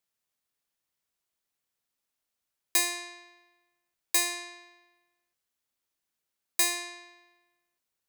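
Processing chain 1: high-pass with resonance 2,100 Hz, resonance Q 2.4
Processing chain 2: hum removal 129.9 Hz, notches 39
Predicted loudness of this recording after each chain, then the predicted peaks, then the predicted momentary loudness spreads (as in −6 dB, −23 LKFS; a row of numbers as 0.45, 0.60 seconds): −26.5, −28.0 LKFS; −10.0, −11.5 dBFS; 16, 16 LU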